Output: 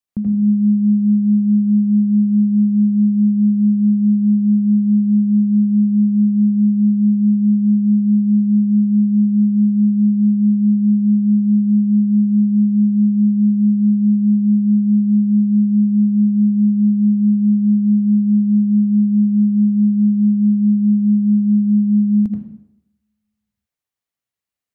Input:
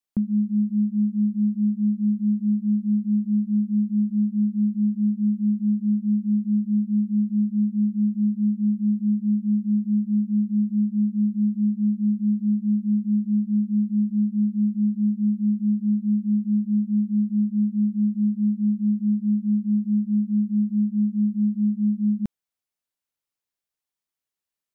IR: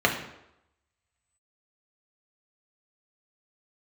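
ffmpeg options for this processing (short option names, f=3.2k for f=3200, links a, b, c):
-filter_complex "[0:a]equalizer=f=91:w=0.76:g=5.5,asplit=2[a][b];[1:a]atrim=start_sample=2205,adelay=79[c];[b][c]afir=irnorm=-1:irlink=0,volume=-15.5dB[d];[a][d]amix=inputs=2:normalize=0,volume=-1dB"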